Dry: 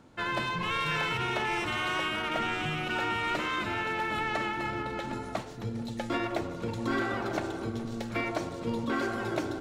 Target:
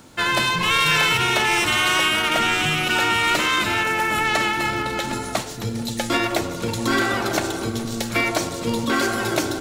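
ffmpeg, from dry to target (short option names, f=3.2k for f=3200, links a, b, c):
-filter_complex "[0:a]crystalizer=i=4:c=0,asettb=1/sr,asplit=3[a][b][c];[a]atrim=end=3.834[d];[b]atrim=start=3.83:end=4.25,asetpts=PTS-STARTPTS,afade=t=in:d=0.004:c=qsin,afade=t=out:st=0.416:d=0.004:c=qsin,equalizer=f=3.8k:w=2:g=-7[e];[c]atrim=start=4.246[f];[d][e]acrossfade=d=0.004:c1=hsin:c2=qsin[g];[g][f]acrossfade=d=0.004:c1=qsin:c2=hsin,volume=8dB"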